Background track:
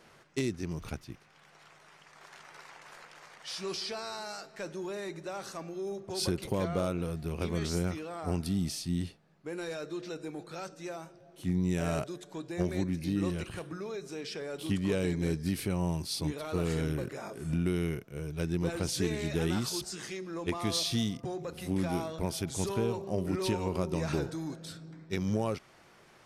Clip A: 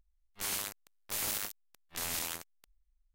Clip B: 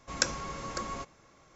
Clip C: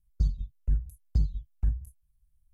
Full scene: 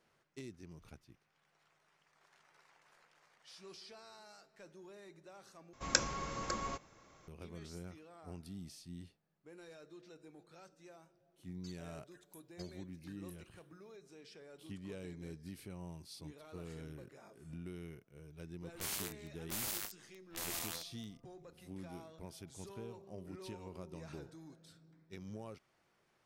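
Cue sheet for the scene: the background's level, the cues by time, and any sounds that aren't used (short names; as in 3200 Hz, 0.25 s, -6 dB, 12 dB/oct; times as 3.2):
background track -17 dB
5.73 replace with B -2.5 dB
11.44 add C -1 dB + resonant high-pass 1900 Hz, resonance Q 1.8
18.4 add A -5.5 dB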